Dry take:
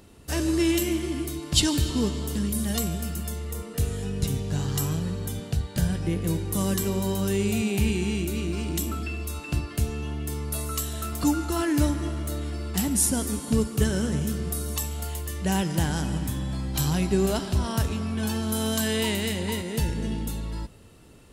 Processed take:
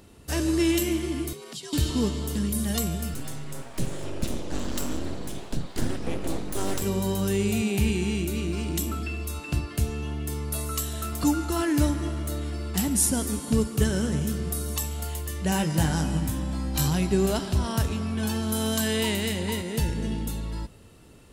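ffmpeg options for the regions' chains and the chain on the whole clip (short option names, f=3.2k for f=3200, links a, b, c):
-filter_complex "[0:a]asettb=1/sr,asplit=3[a][b][c];[a]atrim=end=1.334[d];[b]atrim=start=1.33:end=1.73,asetpts=PTS-STARTPTS,afade=t=in:d=0.004:c=qsin,afade=t=out:st=0.396:d=0.004:c=qsin,lowshelf=f=350:g=-10,acompressor=threshold=-38dB:ratio=4:attack=3.2:release=140:knee=1:detection=peak,afreqshift=78[e];[c]atrim=start=1.726[f];[d][e]acrossfade=d=0.004:c1=hsin:c2=qsin[g];[g][f]acrossfade=d=0.004:c1=qsin:c2=hsin,asettb=1/sr,asplit=3[h][i][j];[h]atrim=end=3.144[k];[i]atrim=start=3.14:end=6.82,asetpts=PTS-STARTPTS,afade=t=in:d=0.004:c=qsin,afade=t=out:st=3.676:d=0.004:c=qsin,lowpass=10k,bandreject=f=110.2:t=h:w=4,bandreject=f=220.4:t=h:w=4,bandreject=f=330.6:t=h:w=4,bandreject=f=440.8:t=h:w=4,bandreject=f=551:t=h:w=4,aeval=exprs='abs(val(0))':c=same[l];[j]atrim=start=6.816[m];[k][l]acrossfade=d=0.004:c1=hsin:c2=qsin[n];[n][m]acrossfade=d=0.004:c1=qsin:c2=hsin,asettb=1/sr,asplit=3[o][p][q];[o]atrim=end=15.504[r];[p]atrim=start=15.5:end=16.88,asetpts=PTS-STARTPTS,afade=t=in:d=0.004:c=qsin,afade=t=out:st=1.376:d=0.004:c=qsin,bandreject=f=3.3k:w=13,asplit=2[s][t];[t]adelay=19,volume=-4.5dB[u];[s][u]amix=inputs=2:normalize=0,atrim=end_sample=60858[v];[q]atrim=start=16.876[w];[r][v]acrossfade=d=0.004:c1=hsin:c2=qsin[x];[x][w]acrossfade=d=0.004:c1=qsin:c2=hsin"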